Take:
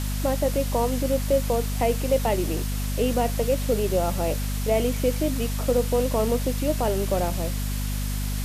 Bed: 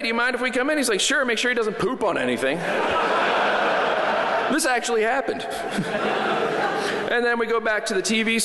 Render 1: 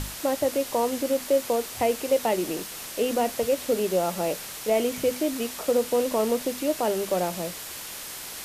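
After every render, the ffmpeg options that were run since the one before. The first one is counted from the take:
-af "bandreject=f=50:t=h:w=6,bandreject=f=100:t=h:w=6,bandreject=f=150:t=h:w=6,bandreject=f=200:t=h:w=6,bandreject=f=250:t=h:w=6"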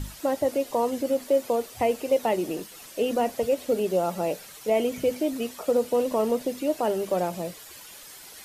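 -af "afftdn=nr=11:nf=-38"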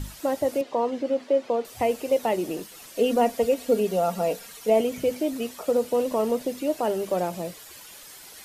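-filter_complex "[0:a]asettb=1/sr,asplit=3[a][b][c];[a]atrim=end=0.614[d];[b]atrim=start=0.61:end=1.65,asetpts=PTS-STARTPTS,afade=t=in:d=0.004:c=qsin,afade=t=out:st=1.036:d=0.004:c=qsin,highpass=170,lowpass=3.8k[e];[c]atrim=start=1.646[f];[d][e]acrossfade=d=0.004:c1=hsin:c2=qsin[g];[g][f]acrossfade=d=0.004:c1=qsin:c2=hsin,asettb=1/sr,asplit=3[h][i][j];[h]atrim=end=2.954[k];[i]atrim=start=2.95:end=4.81,asetpts=PTS-STARTPTS,afade=t=in:d=0.004:c=qsin,afade=t=out:st=1.856:d=0.004:c=qsin,aecho=1:1:4.3:0.61,atrim=end_sample=82026[l];[j]atrim=start=4.806[m];[k][l]acrossfade=d=0.004:c1=hsin:c2=qsin[n];[n][m]acrossfade=d=0.004:c1=qsin:c2=hsin"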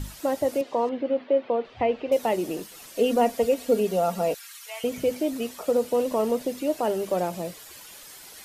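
-filter_complex "[0:a]asettb=1/sr,asplit=3[a][b][c];[a]atrim=end=0.894[d];[b]atrim=start=0.89:end=2.12,asetpts=PTS-STARTPTS,afade=t=in:d=0.004:c=qsin,afade=t=out:st=1.226:d=0.004:c=qsin,lowpass=f=3.5k:w=0.5412,lowpass=f=3.5k:w=1.3066[e];[c]atrim=start=2.116[f];[d][e]acrossfade=d=0.004:c1=hsin:c2=qsin[g];[g][f]acrossfade=d=0.004:c1=qsin:c2=hsin,asettb=1/sr,asplit=3[h][i][j];[h]atrim=end=4.344[k];[i]atrim=start=4.34:end=4.84,asetpts=PTS-STARTPTS,afade=t=in:d=0.004:c=qsin,afade=t=out:st=0.496:d=0.004:c=qsin,highpass=f=1.2k:w=0.5412,highpass=f=1.2k:w=1.3066[l];[j]atrim=start=4.836[m];[k][l]acrossfade=d=0.004:c1=hsin:c2=qsin[n];[n][m]acrossfade=d=0.004:c1=qsin:c2=hsin"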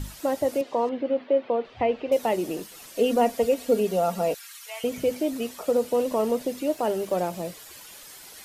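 -filter_complex "[0:a]asettb=1/sr,asplit=3[a][b][c];[a]atrim=end=6.684[d];[b]atrim=start=6.68:end=7.43,asetpts=PTS-STARTPTS,afade=t=in:d=0.004:c=qsin,afade=t=out:st=0.746:d=0.004:c=qsin,aeval=exprs='sgn(val(0))*max(abs(val(0))-0.00158,0)':c=same[e];[c]atrim=start=7.426[f];[d][e]acrossfade=d=0.004:c1=hsin:c2=qsin[g];[g][f]acrossfade=d=0.004:c1=qsin:c2=hsin"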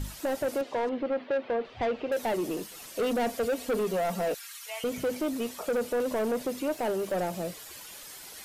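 -af "asoftclip=type=tanh:threshold=-24dB"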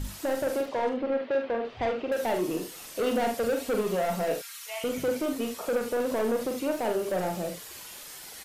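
-af "aecho=1:1:44|74:0.531|0.299"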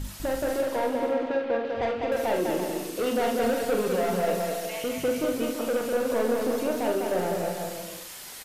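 -af "aecho=1:1:200|340|438|506.6|554.6:0.631|0.398|0.251|0.158|0.1"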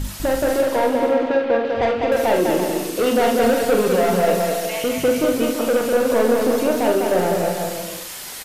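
-af "volume=8.5dB"

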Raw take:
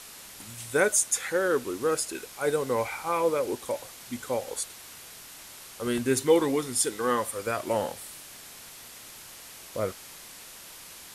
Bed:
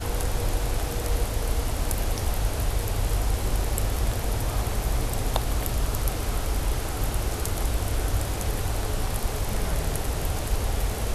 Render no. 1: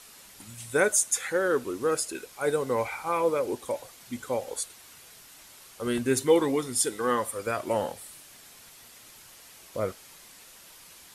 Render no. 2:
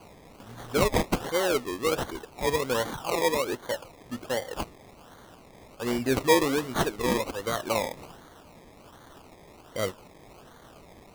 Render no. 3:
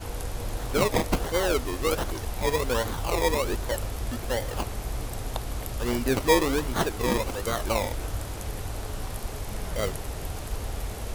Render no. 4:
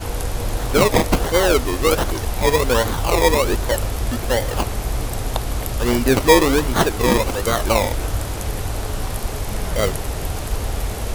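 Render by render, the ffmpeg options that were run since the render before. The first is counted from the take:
-af "afftdn=nr=6:nf=-46"
-af "acrusher=samples=24:mix=1:aa=0.000001:lfo=1:lforange=14.4:lforate=1.3"
-filter_complex "[1:a]volume=-6.5dB[a];[0:a][a]amix=inputs=2:normalize=0"
-af "volume=9dB,alimiter=limit=-3dB:level=0:latency=1"

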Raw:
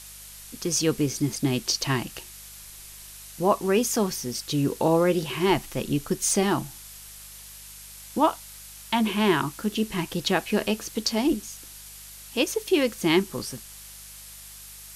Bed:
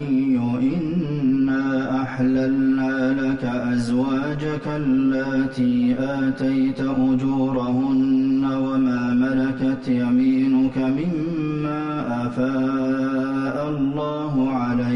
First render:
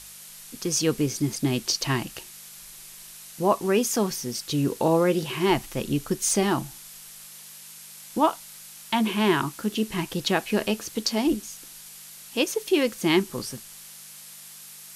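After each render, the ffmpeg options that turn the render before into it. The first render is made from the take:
-af "bandreject=f=50:t=h:w=4,bandreject=f=100:t=h:w=4"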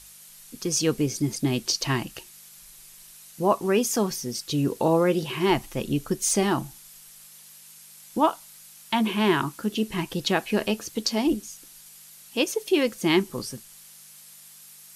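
-af "afftdn=nr=6:nf=-45"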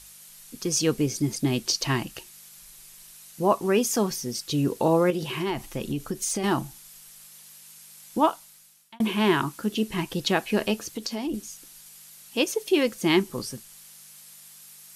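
-filter_complex "[0:a]asettb=1/sr,asplit=3[a][b][c];[a]atrim=end=5.104[d];[b]atrim=start=5.1:end=6.44,asetpts=PTS-STARTPTS,afade=t=in:d=0.004:c=qsin,afade=t=out:st=1.336:d=0.004:c=qsin,acompressor=threshold=-24dB:ratio=5:attack=3.2:release=140:knee=1:detection=peak[e];[c]atrim=start=6.436[f];[d][e]acrossfade=d=0.004:c1=hsin:c2=qsin[g];[g][f]acrossfade=d=0.004:c1=qsin:c2=hsin,asettb=1/sr,asplit=3[h][i][j];[h]atrim=end=10.794[k];[i]atrim=start=10.79:end=11.34,asetpts=PTS-STARTPTS,afade=t=in:d=0.004:c=qsin,afade=t=out:st=0.546:d=0.004:c=qsin,acompressor=threshold=-28dB:ratio=3:attack=3.2:release=140:knee=1:detection=peak[l];[j]atrim=start=11.336[m];[k][l]acrossfade=d=0.004:c1=hsin:c2=qsin[n];[n][m]acrossfade=d=0.004:c1=qsin:c2=hsin,asplit=2[o][p];[o]atrim=end=9,asetpts=PTS-STARTPTS,afade=t=out:st=8.24:d=0.76[q];[p]atrim=start=9,asetpts=PTS-STARTPTS,afade=t=in:d=0.004:c=hsin[r];[q][r]concat=n=2:v=0:a=1"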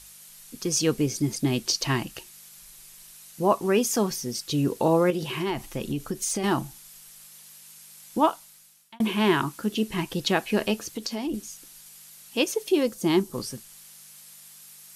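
-filter_complex "[0:a]asettb=1/sr,asplit=3[a][b][c];[a]atrim=end=12.724[d];[b]atrim=start=12.72:end=13.34,asetpts=PTS-STARTPTS,afade=t=in:d=0.004:c=qsin,afade=t=out:st=0.616:d=0.004:c=qsin,equalizer=f=2.2k:t=o:w=1.4:g=-8.5[e];[c]atrim=start=13.336[f];[d][e]acrossfade=d=0.004:c1=hsin:c2=qsin[g];[g][f]acrossfade=d=0.004:c1=qsin:c2=hsin"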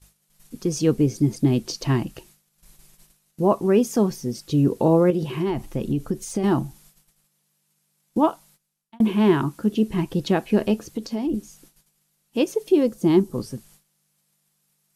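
-af "tiltshelf=f=840:g=7,agate=range=-16dB:threshold=-51dB:ratio=16:detection=peak"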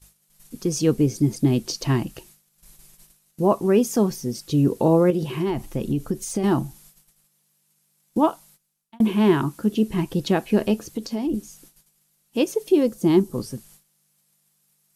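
-af "highshelf=f=6.3k:g=5"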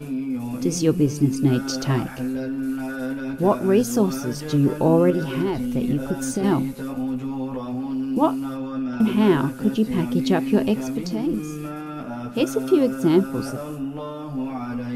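-filter_complex "[1:a]volume=-7.5dB[a];[0:a][a]amix=inputs=2:normalize=0"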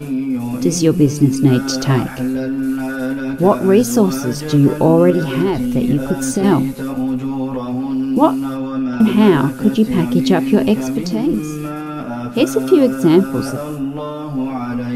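-af "volume=7dB,alimiter=limit=-1dB:level=0:latency=1"

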